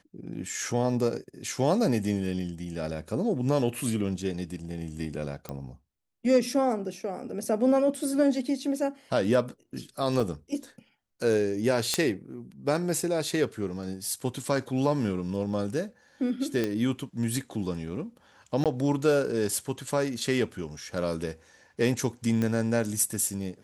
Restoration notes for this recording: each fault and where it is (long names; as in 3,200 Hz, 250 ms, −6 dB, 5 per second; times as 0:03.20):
0:05.49: click −20 dBFS
0:10.20: drop-out 4.3 ms
0:11.94: click −9 dBFS
0:16.64: click −15 dBFS
0:18.64–0:18.66: drop-out 17 ms
0:22.42: click −16 dBFS